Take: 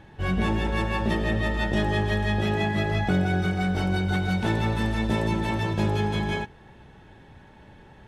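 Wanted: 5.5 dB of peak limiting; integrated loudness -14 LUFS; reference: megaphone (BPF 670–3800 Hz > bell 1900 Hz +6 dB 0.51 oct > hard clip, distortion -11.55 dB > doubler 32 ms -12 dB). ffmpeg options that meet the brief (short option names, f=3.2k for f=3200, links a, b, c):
-filter_complex "[0:a]alimiter=limit=-18dB:level=0:latency=1,highpass=670,lowpass=3.8k,equalizer=f=1.9k:t=o:w=0.51:g=6,asoftclip=type=hard:threshold=-29.5dB,asplit=2[a][b];[b]adelay=32,volume=-12dB[c];[a][c]amix=inputs=2:normalize=0,volume=18.5dB"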